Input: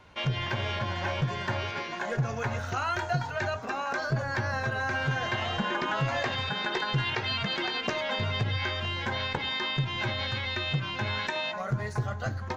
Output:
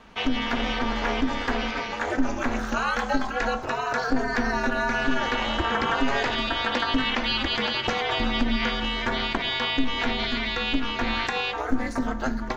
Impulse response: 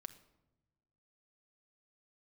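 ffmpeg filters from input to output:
-filter_complex "[0:a]aeval=exprs='val(0)*sin(2*PI*130*n/s)':c=same,asplit=2[s0][s1];[1:a]atrim=start_sample=2205,asetrate=52920,aresample=44100[s2];[s1][s2]afir=irnorm=-1:irlink=0,volume=3.16[s3];[s0][s3]amix=inputs=2:normalize=0"

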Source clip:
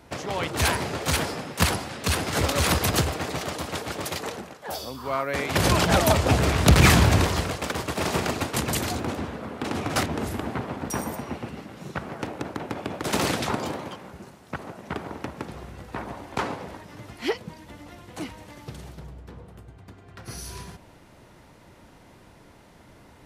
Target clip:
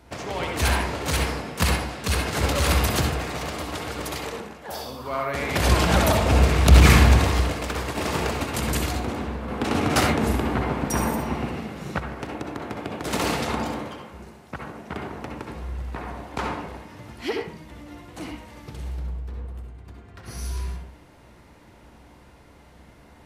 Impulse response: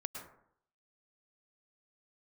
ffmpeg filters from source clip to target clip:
-filter_complex "[1:a]atrim=start_sample=2205,asetrate=74970,aresample=44100[s0];[0:a][s0]afir=irnorm=-1:irlink=0,asettb=1/sr,asplit=3[s1][s2][s3];[s1]atrim=end=9.484[s4];[s2]atrim=start=9.48:end=12,asetpts=PTS-STARTPTS,afade=t=in:d=0.004:c=qsin,afade=t=out:st=2.516:d=0.004:c=qsin,acontrast=34[s5];[s3]atrim=start=11.996[s6];[s4][s5]acrossfade=d=0.004:c1=hsin:c2=qsin[s7];[s7][s6]acrossfade=d=0.004:c1=qsin:c2=hsin,equalizer=f=63:w=6.6:g=14,volume=1.88"

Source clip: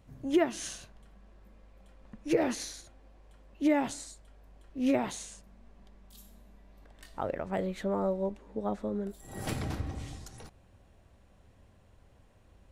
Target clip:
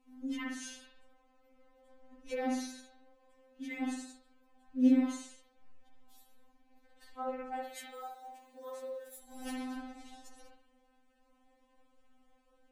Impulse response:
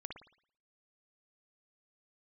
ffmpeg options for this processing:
-filter_complex "[0:a]asettb=1/sr,asplit=3[s0][s1][s2];[s0]atrim=end=7.644[s3];[s1]atrim=start=7.64:end=9.19,asetpts=PTS-STARTPTS,afade=t=in:d=0.004:c=qsin,afade=t=out:st=1.546:d=0.004:c=qsin,aemphasis=mode=production:type=riaa[s4];[s2]atrim=start=9.186[s5];[s3][s4]acrossfade=d=0.004:c1=hsin:c2=qsin[s6];[s6][s5]acrossfade=d=0.004:c1=qsin:c2=hsin[s7];[1:a]atrim=start_sample=2205,afade=t=out:st=0.38:d=0.01,atrim=end_sample=17199[s8];[s7][s8]afir=irnorm=-1:irlink=0,afftfilt=real='re*3.46*eq(mod(b,12),0)':imag='im*3.46*eq(mod(b,12),0)':win_size=2048:overlap=0.75"

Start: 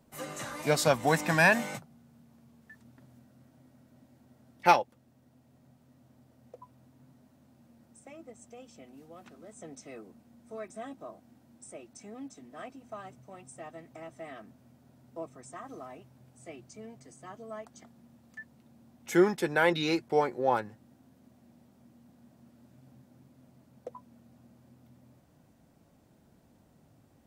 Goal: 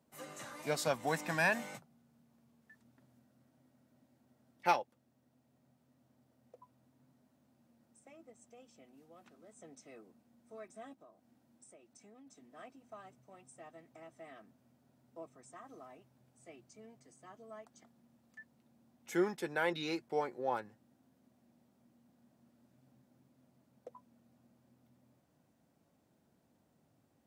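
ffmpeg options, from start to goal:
-filter_complex "[0:a]highpass=f=150:p=1,asplit=3[s0][s1][s2];[s0]afade=t=out:st=10.93:d=0.02[s3];[s1]acompressor=threshold=0.00398:ratio=6,afade=t=in:st=10.93:d=0.02,afade=t=out:st=12.26:d=0.02[s4];[s2]afade=t=in:st=12.26:d=0.02[s5];[s3][s4][s5]amix=inputs=3:normalize=0,volume=0.376"

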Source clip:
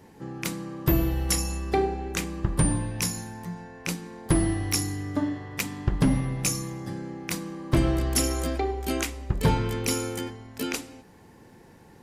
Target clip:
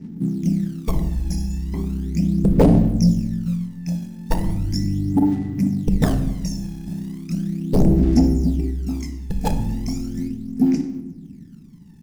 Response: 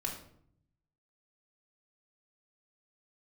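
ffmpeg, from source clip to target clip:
-filter_complex "[0:a]firequalizer=gain_entry='entry(110,0);entry(160,14);entry(260,11);entry(470,-14);entry(860,-19);entry(1300,-25);entry(2000,-10);entry(3500,-28);entry(5200,-1);entry(8600,-16)':delay=0.05:min_phase=1,acrusher=bits=6:mode=log:mix=0:aa=0.000001,aeval=exprs='0.944*(cos(1*acos(clip(val(0)/0.944,-1,1)))-cos(1*PI/2))+0.422*(cos(3*acos(clip(val(0)/0.944,-1,1)))-cos(3*PI/2))+0.188*(cos(7*acos(clip(val(0)/0.944,-1,1)))-cos(7*PI/2))':c=same,aphaser=in_gain=1:out_gain=1:delay=1.2:decay=0.72:speed=0.37:type=sinusoidal,asplit=2[s0][s1];[1:a]atrim=start_sample=2205,asetrate=26460,aresample=44100[s2];[s1][s2]afir=irnorm=-1:irlink=0,volume=0.376[s3];[s0][s3]amix=inputs=2:normalize=0,volume=0.282"

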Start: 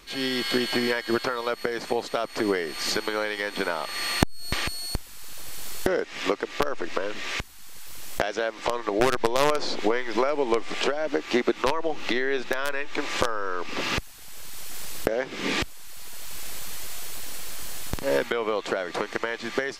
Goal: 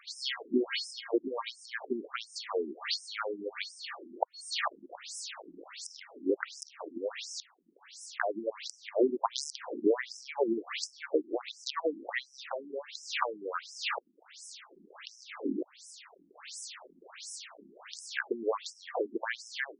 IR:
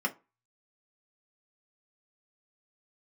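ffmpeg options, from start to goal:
-filter_complex "[0:a]asplit=3[s0][s1][s2];[s0]afade=t=out:st=4.63:d=0.02[s3];[s1]aeval=exprs='0.266*sin(PI/2*1.78*val(0)/0.266)':c=same,afade=t=in:st=4.63:d=0.02,afade=t=out:st=5.63:d=0.02[s4];[s2]afade=t=in:st=5.63:d=0.02[s5];[s3][s4][s5]amix=inputs=3:normalize=0,afftfilt=real='re*between(b*sr/1024,260*pow(7300/260,0.5+0.5*sin(2*PI*1.4*pts/sr))/1.41,260*pow(7300/260,0.5+0.5*sin(2*PI*1.4*pts/sr))*1.41)':imag='im*between(b*sr/1024,260*pow(7300/260,0.5+0.5*sin(2*PI*1.4*pts/sr))/1.41,260*pow(7300/260,0.5+0.5*sin(2*PI*1.4*pts/sr))*1.41)':win_size=1024:overlap=0.75"

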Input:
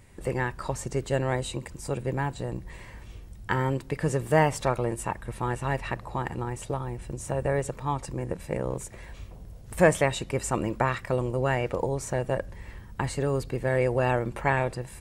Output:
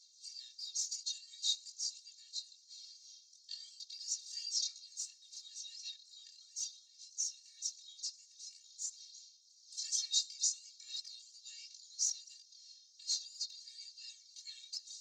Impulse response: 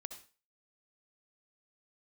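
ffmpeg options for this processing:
-filter_complex "[0:a]asuperpass=centerf=5200:order=8:qfactor=2,aphaser=in_gain=1:out_gain=1:delay=3.3:decay=0.41:speed=0.43:type=sinusoidal,asplit=2[s0][s1];[1:a]atrim=start_sample=2205[s2];[s1][s2]afir=irnorm=-1:irlink=0,volume=0.251[s3];[s0][s3]amix=inputs=2:normalize=0,flanger=delay=18.5:depth=7:speed=2.9,afftfilt=real='re*eq(mod(floor(b*sr/1024/240),2),1)':imag='im*eq(mod(floor(b*sr/1024/240),2),1)':win_size=1024:overlap=0.75,volume=5.96"

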